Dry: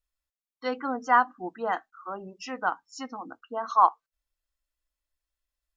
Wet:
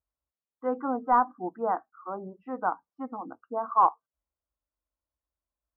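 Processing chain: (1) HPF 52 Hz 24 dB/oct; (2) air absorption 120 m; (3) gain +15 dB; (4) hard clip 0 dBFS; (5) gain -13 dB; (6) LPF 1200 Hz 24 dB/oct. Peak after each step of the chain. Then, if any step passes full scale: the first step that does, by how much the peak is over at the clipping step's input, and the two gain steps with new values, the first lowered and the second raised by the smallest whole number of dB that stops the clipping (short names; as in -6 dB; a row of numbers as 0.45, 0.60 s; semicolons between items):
-6.5, -7.0, +8.0, 0.0, -13.0, -12.0 dBFS; step 3, 8.0 dB; step 3 +7 dB, step 5 -5 dB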